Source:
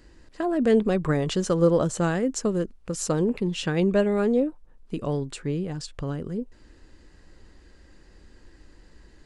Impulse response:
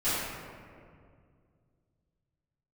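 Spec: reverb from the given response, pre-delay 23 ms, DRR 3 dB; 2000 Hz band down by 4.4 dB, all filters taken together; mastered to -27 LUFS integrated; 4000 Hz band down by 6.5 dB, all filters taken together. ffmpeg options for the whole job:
-filter_complex "[0:a]equalizer=f=2k:t=o:g=-4.5,equalizer=f=4k:t=o:g=-7.5,asplit=2[a][b];[1:a]atrim=start_sample=2205,adelay=23[c];[b][c]afir=irnorm=-1:irlink=0,volume=-14.5dB[d];[a][d]amix=inputs=2:normalize=0,volume=-3.5dB"

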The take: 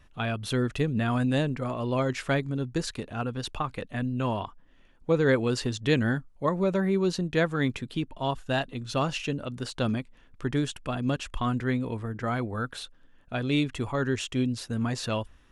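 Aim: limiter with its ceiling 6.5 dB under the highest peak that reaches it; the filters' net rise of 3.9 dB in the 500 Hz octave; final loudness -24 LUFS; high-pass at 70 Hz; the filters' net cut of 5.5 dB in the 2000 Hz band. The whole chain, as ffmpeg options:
-af "highpass=70,equalizer=f=500:t=o:g=5,equalizer=f=2k:t=o:g=-8,volume=4.5dB,alimiter=limit=-11.5dB:level=0:latency=1"

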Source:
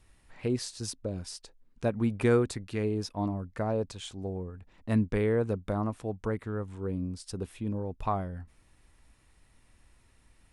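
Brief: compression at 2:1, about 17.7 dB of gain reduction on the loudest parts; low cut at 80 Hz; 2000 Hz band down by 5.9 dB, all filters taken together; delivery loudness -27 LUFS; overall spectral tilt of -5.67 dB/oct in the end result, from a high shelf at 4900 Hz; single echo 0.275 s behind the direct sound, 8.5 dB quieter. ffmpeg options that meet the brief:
-af "highpass=80,equalizer=f=2k:t=o:g=-8.5,highshelf=f=4.9k:g=4,acompressor=threshold=-54dB:ratio=2,aecho=1:1:275:0.376,volume=20dB"

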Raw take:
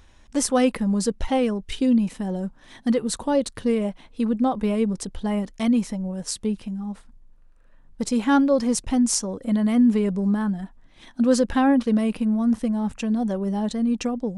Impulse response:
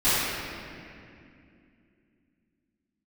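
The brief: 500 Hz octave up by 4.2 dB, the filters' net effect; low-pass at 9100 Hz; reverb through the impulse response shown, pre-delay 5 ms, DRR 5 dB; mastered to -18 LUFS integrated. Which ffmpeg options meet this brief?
-filter_complex "[0:a]lowpass=9.1k,equalizer=f=500:t=o:g=4.5,asplit=2[a][b];[1:a]atrim=start_sample=2205,adelay=5[c];[b][c]afir=irnorm=-1:irlink=0,volume=-23dB[d];[a][d]amix=inputs=2:normalize=0,volume=2.5dB"

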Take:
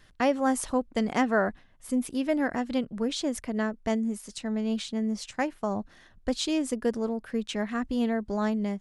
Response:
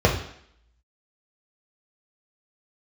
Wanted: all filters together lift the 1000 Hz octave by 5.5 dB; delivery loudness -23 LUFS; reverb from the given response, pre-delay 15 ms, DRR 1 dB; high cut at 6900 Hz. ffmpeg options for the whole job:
-filter_complex "[0:a]lowpass=6.9k,equalizer=f=1k:t=o:g=7.5,asplit=2[a][b];[1:a]atrim=start_sample=2205,adelay=15[c];[b][c]afir=irnorm=-1:irlink=0,volume=-20.5dB[d];[a][d]amix=inputs=2:normalize=0,volume=1dB"

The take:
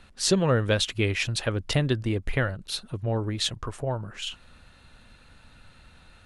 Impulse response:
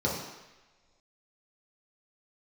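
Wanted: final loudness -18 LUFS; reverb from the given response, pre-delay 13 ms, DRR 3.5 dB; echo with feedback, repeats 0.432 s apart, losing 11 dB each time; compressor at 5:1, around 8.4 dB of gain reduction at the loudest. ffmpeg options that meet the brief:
-filter_complex "[0:a]acompressor=threshold=-27dB:ratio=5,aecho=1:1:432|864|1296:0.282|0.0789|0.0221,asplit=2[a][b];[1:a]atrim=start_sample=2205,adelay=13[c];[b][c]afir=irnorm=-1:irlink=0,volume=-13.5dB[d];[a][d]amix=inputs=2:normalize=0,volume=10.5dB"

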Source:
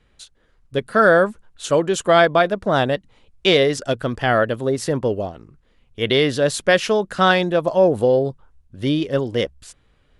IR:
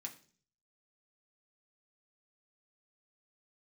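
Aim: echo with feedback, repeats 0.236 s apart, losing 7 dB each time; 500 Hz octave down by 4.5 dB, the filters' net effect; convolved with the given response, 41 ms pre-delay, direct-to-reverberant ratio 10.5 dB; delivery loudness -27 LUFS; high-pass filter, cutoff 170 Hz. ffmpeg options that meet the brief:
-filter_complex "[0:a]highpass=170,equalizer=f=500:t=o:g=-5.5,aecho=1:1:236|472|708|944|1180:0.447|0.201|0.0905|0.0407|0.0183,asplit=2[a][b];[1:a]atrim=start_sample=2205,adelay=41[c];[b][c]afir=irnorm=-1:irlink=0,volume=-7dB[d];[a][d]amix=inputs=2:normalize=0,volume=-6.5dB"

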